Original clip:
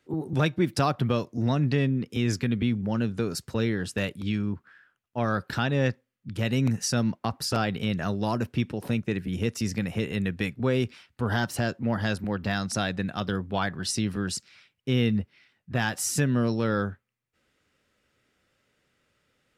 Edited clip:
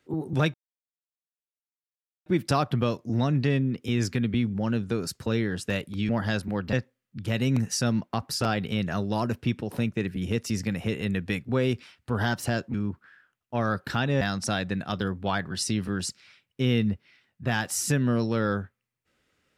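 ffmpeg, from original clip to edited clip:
-filter_complex "[0:a]asplit=6[s0][s1][s2][s3][s4][s5];[s0]atrim=end=0.54,asetpts=PTS-STARTPTS,afade=t=out:st=0.536:d=0.004:c=hsin,apad=pad_dur=1.72[s6];[s1]atrim=start=0.54:end=4.372,asetpts=PTS-STARTPTS,afade=t=in:d=0.004:c=hsin[s7];[s2]atrim=start=11.848:end=12.492[s8];[s3]atrim=start=5.838:end=11.852[s9];[s4]atrim=start=4.368:end=5.842[s10];[s5]atrim=start=12.488[s11];[s6][s7]concat=n=2:v=0:a=1[s12];[s12][s8]acrossfade=d=0.004:c1=hsin:c2=hsin[s13];[s13][s9]acrossfade=d=0.004:c1=hsin:c2=hsin[s14];[s14][s10]acrossfade=d=0.004:c1=hsin:c2=hsin[s15];[s15][s11]acrossfade=d=0.004:c1=hsin:c2=hsin"

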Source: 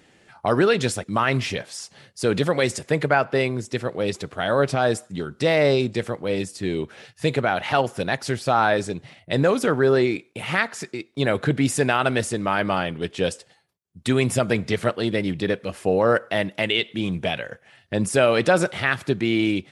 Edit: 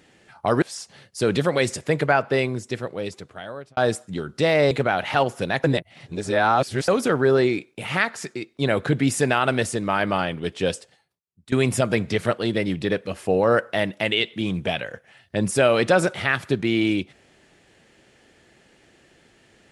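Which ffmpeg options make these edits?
-filter_complex "[0:a]asplit=7[s0][s1][s2][s3][s4][s5][s6];[s0]atrim=end=0.622[s7];[s1]atrim=start=1.638:end=4.79,asetpts=PTS-STARTPTS,afade=t=out:st=1.822:d=1.33[s8];[s2]atrim=start=4.79:end=5.732,asetpts=PTS-STARTPTS,afade=t=in:d=0.004:c=hsin[s9];[s3]atrim=start=7.288:end=8.222[s10];[s4]atrim=start=8.218:end=9.462,asetpts=PTS-STARTPTS,areverse[s11];[s5]atrim=start=9.458:end=14.1,asetpts=PTS-STARTPTS,afade=t=out:st=3.852:d=0.79:silence=0.11885[s12];[s6]atrim=start=14.1,asetpts=PTS-STARTPTS,afade=t=in:d=0.004:c=hsin:silence=0.11885[s13];[s8][s9]concat=n=2:v=0:a=1[s14];[s7][s14]acrossfade=d=0.004:c1=hsin:c2=hsin[s15];[s15][s10]acrossfade=d=0.004:c1=hsin:c2=hsin[s16];[s16][s11]acrossfade=d=0.004:c1=hsin:c2=hsin[s17];[s12][s13]concat=n=2:v=0:a=1[s18];[s17][s18]acrossfade=d=0.004:c1=hsin:c2=hsin"

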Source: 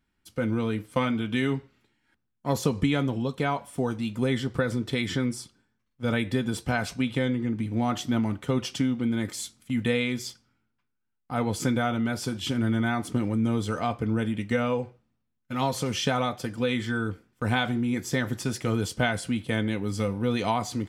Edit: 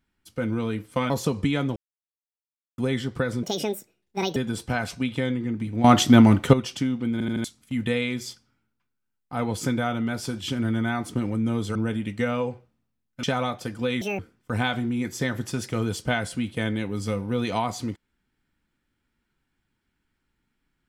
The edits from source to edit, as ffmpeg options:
-filter_complex "[0:a]asplit=16[s0][s1][s2][s3][s4][s5][s6][s7][s8][s9][s10][s11][s12][s13][s14][s15];[s0]atrim=end=1.102[s16];[s1]atrim=start=2.488:end=3.15,asetpts=PTS-STARTPTS,afade=t=out:st=0.658:d=0.004:c=hsin[s17];[s2]atrim=start=3.15:end=4.17,asetpts=PTS-STARTPTS,volume=0[s18];[s3]atrim=start=4.17:end=4.824,asetpts=PTS-STARTPTS,afade=t=in:d=0.004:c=hsin[s19];[s4]atrim=start=4.82:end=6.35,asetpts=PTS-STARTPTS,asetrate=72324,aresample=44100,atrim=end_sample=41142,asetpts=PTS-STARTPTS[s20];[s5]atrim=start=6.346:end=7.832[s21];[s6]atrim=start=7.828:end=8.522,asetpts=PTS-STARTPTS,volume=3.98[s22];[s7]atrim=start=8.518:end=9.192[s23];[s8]atrim=start=9.108:end=9.192[s24];[s9]atrim=start=9.108:end=9.192[s25];[s10]atrim=start=9.108:end=9.192[s26];[s11]atrim=start=9.428:end=13.742[s27];[s12]atrim=start=14.068:end=15.552[s28];[s13]atrim=start=16.018:end=16.804[s29];[s14]atrim=start=16.8:end=17.11,asetpts=PTS-STARTPTS,asetrate=77175,aresample=44100[s30];[s15]atrim=start=17.106[s31];[s17][s18][s19]concat=n=3:v=0:a=1[s32];[s16][s32]acrossfade=d=0.004:c1=hsin:c2=hsin[s33];[s33][s20]acrossfade=d=0.004:c1=hsin:c2=hsin[s34];[s34][s21]acrossfade=d=0.004:c1=hsin:c2=hsin[s35];[s35][s22]acrossfade=d=0.004:c1=hsin:c2=hsin[s36];[s36][s23]acrossfade=d=0.004:c1=hsin:c2=hsin[s37];[s37][s24]acrossfade=d=0.004:c1=hsin:c2=hsin[s38];[s38][s25]acrossfade=d=0.004:c1=hsin:c2=hsin[s39];[s39][s26]acrossfade=d=0.004:c1=hsin:c2=hsin[s40];[s40][s27]acrossfade=d=0.004:c1=hsin:c2=hsin[s41];[s41][s28]acrossfade=d=0.004:c1=hsin:c2=hsin[s42];[s42][s29]acrossfade=d=0.004:c1=hsin:c2=hsin[s43];[s43][s30]acrossfade=d=0.004:c1=hsin:c2=hsin[s44];[s44][s31]acrossfade=d=0.004:c1=hsin:c2=hsin"

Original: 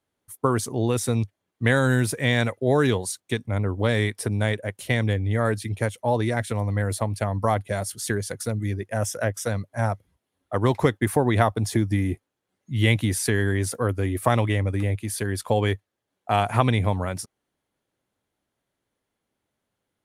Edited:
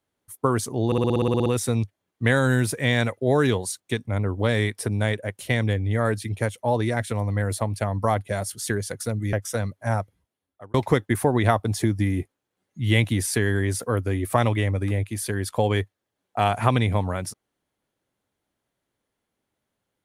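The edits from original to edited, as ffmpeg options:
-filter_complex "[0:a]asplit=13[s0][s1][s2][s3][s4][s5][s6][s7][s8][s9][s10][s11][s12];[s0]atrim=end=0.922[s13];[s1]atrim=start=0.858:end=0.922[s14];[s2]atrim=start=0.858:end=0.922[s15];[s3]atrim=start=0.858:end=0.922[s16];[s4]atrim=start=0.858:end=0.922[s17];[s5]atrim=start=0.858:end=0.922[s18];[s6]atrim=start=0.858:end=0.922[s19];[s7]atrim=start=0.858:end=0.922[s20];[s8]atrim=start=0.858:end=0.922[s21];[s9]atrim=start=0.858:end=0.922[s22];[s10]atrim=start=0.858:end=8.732[s23];[s11]atrim=start=9.248:end=10.66,asetpts=PTS-STARTPTS,afade=t=out:st=0.652:d=0.76[s24];[s12]atrim=start=10.66,asetpts=PTS-STARTPTS,afade=t=in:d=0.004:c=hsin[s25];[s13][s14]acrossfade=d=0.004:c1=hsin:c2=hsin[s26];[s26][s15]acrossfade=d=0.004:c1=hsin:c2=hsin[s27];[s27][s16]acrossfade=d=0.004:c1=hsin:c2=hsin[s28];[s28][s17]acrossfade=d=0.004:c1=hsin:c2=hsin[s29];[s29][s18]acrossfade=d=0.004:c1=hsin:c2=hsin[s30];[s30][s19]acrossfade=d=0.004:c1=hsin:c2=hsin[s31];[s31][s20]acrossfade=d=0.004:c1=hsin:c2=hsin[s32];[s32][s21]acrossfade=d=0.004:c1=hsin:c2=hsin[s33];[s33][s22]acrossfade=d=0.004:c1=hsin:c2=hsin[s34];[s34][s23]acrossfade=d=0.004:c1=hsin:c2=hsin[s35];[s24][s25]concat=n=2:v=0:a=1[s36];[s35][s36]acrossfade=d=0.004:c1=hsin:c2=hsin"

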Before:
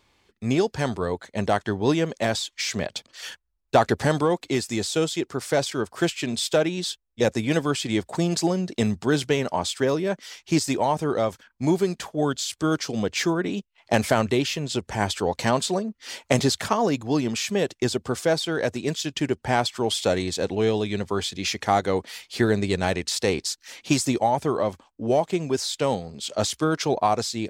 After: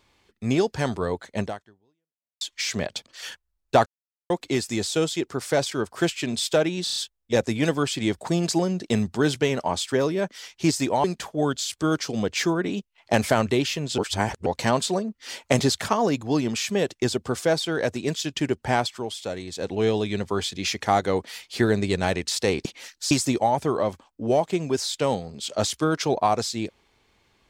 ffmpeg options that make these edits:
-filter_complex "[0:a]asplit=15[s0][s1][s2][s3][s4][s5][s6][s7][s8][s9][s10][s11][s12][s13][s14];[s0]atrim=end=2.41,asetpts=PTS-STARTPTS,afade=t=out:st=1.41:d=1:c=exp[s15];[s1]atrim=start=2.41:end=3.86,asetpts=PTS-STARTPTS,afade=t=in:d=0.004:c=hsin,afade=t=out:st=1.446:d=0.004:c=hsin[s16];[s2]atrim=start=3.86:end=4.3,asetpts=PTS-STARTPTS,volume=0[s17];[s3]atrim=start=4.3:end=6.872,asetpts=PTS-STARTPTS,afade=t=in:d=0.004:c=hsin[s18];[s4]atrim=start=6.838:end=6.872[s19];[s5]atrim=start=6.838:end=6.872[s20];[s6]atrim=start=6.838:end=6.872[s21];[s7]atrim=start=6.838:end=10.922[s22];[s8]atrim=start=11.838:end=14.782[s23];[s9]atrim=start=14.778:end=15.262,asetpts=PTS-STARTPTS,areverse[s24];[s10]atrim=start=15.258:end=19.91,asetpts=PTS-STARTPTS,afade=t=out:st=4.272:d=0.38:silence=0.354813[s25];[s11]atrim=start=19.91:end=20.27,asetpts=PTS-STARTPTS,volume=0.355[s26];[s12]atrim=start=20.27:end=23.452,asetpts=PTS-STARTPTS,afade=t=in:d=0.38:silence=0.354813[s27];[s13]atrim=start=23.448:end=23.912,asetpts=PTS-STARTPTS,areverse[s28];[s14]atrim=start=23.908[s29];[s15][s16][s17][s18]concat=n=4:v=0:a=1[s30];[s30][s19]acrossfade=d=0.004:c1=hsin:c2=hsin[s31];[s31][s20]acrossfade=d=0.004:c1=hsin:c2=hsin[s32];[s32][s21]acrossfade=d=0.004:c1=hsin:c2=hsin[s33];[s33][s22]acrossfade=d=0.004:c1=hsin:c2=hsin[s34];[s34][s23]acrossfade=d=0.004:c1=hsin:c2=hsin[s35];[s35][s24]acrossfade=d=0.004:c1=hsin:c2=hsin[s36];[s25][s26][s27]concat=n=3:v=0:a=1[s37];[s36][s37]acrossfade=d=0.004:c1=hsin:c2=hsin[s38];[s38][s28]acrossfade=d=0.004:c1=hsin:c2=hsin[s39];[s39][s29]acrossfade=d=0.004:c1=hsin:c2=hsin"

